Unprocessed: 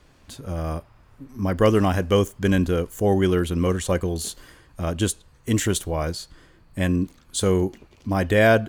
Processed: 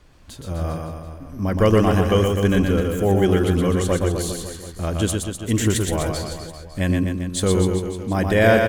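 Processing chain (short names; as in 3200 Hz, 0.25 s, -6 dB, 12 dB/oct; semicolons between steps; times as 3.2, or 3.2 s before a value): low shelf 64 Hz +6 dB; on a send: reverse bouncing-ball echo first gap 0.12 s, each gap 1.1×, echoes 5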